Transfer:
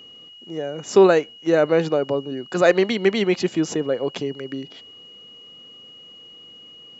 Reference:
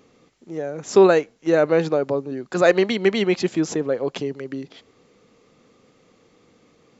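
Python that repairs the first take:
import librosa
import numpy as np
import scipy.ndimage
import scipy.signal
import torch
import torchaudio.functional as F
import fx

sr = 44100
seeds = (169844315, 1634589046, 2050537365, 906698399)

y = fx.notch(x, sr, hz=2900.0, q=30.0)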